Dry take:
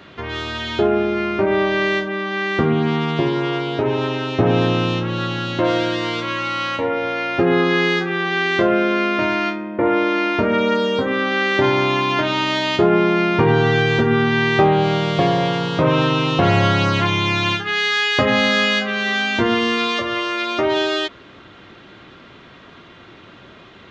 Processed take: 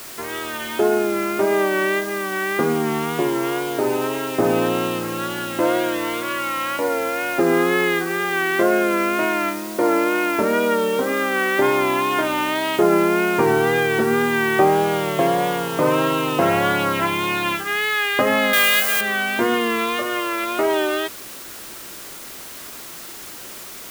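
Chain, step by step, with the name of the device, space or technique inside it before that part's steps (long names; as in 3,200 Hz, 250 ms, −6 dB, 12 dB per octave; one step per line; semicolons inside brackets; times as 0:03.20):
wax cylinder (band-pass filter 250–2,400 Hz; tape wow and flutter; white noise bed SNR 16 dB)
0:18.53–0:19.01: spectral tilt +4 dB per octave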